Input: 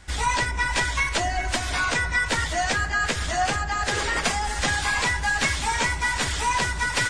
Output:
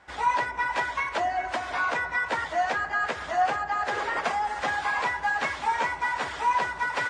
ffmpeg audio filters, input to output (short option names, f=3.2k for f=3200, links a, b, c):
-af "bandpass=f=840:t=q:w=1:csg=0,volume=1.5dB"